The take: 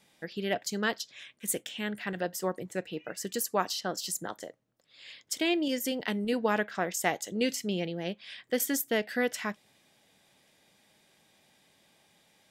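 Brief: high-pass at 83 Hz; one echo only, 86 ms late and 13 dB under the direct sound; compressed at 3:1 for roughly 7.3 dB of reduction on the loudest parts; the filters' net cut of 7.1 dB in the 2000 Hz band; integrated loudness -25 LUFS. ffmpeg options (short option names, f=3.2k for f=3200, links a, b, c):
-af "highpass=83,equalizer=f=2k:t=o:g=-9,acompressor=threshold=-34dB:ratio=3,aecho=1:1:86:0.224,volume=13dB"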